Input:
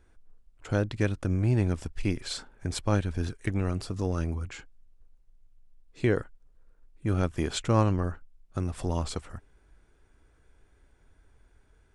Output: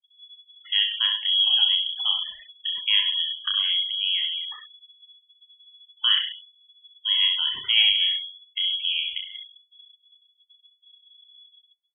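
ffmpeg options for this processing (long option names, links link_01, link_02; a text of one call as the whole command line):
ffmpeg -i in.wav -filter_complex "[0:a]asplit=2[link_01][link_02];[link_02]aecho=0:1:30|63|99.3|139.2|183.2:0.631|0.398|0.251|0.158|0.1[link_03];[link_01][link_03]amix=inputs=2:normalize=0,acrossover=split=2600[link_04][link_05];[link_05]acompressor=threshold=-43dB:ratio=4:attack=1:release=60[link_06];[link_04][link_06]amix=inputs=2:normalize=0,asplit=2[link_07][link_08];[link_08]aecho=0:1:66|132|198|264:0.355|0.124|0.0435|0.0152[link_09];[link_07][link_09]amix=inputs=2:normalize=0,afftfilt=real='re*gte(hypot(re,im),0.02)':imag='im*gte(hypot(re,im),0.02)':win_size=1024:overlap=0.75,lowpass=frequency=2900:width_type=q:width=0.5098,lowpass=frequency=2900:width_type=q:width=0.6013,lowpass=frequency=2900:width_type=q:width=0.9,lowpass=frequency=2900:width_type=q:width=2.563,afreqshift=-3400,volume=1.5dB" out.wav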